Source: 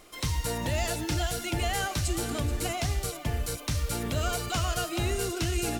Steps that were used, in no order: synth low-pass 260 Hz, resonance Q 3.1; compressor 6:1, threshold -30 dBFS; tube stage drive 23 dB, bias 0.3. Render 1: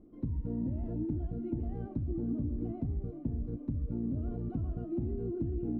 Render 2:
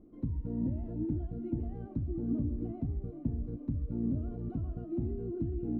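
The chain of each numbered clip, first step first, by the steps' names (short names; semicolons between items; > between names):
tube stage > synth low-pass > compressor; compressor > tube stage > synth low-pass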